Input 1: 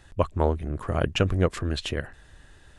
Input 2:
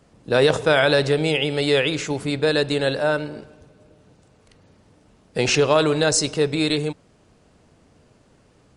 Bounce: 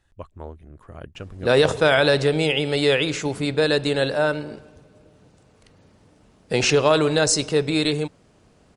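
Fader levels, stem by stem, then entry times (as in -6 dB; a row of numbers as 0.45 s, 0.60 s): -14.0 dB, 0.0 dB; 0.00 s, 1.15 s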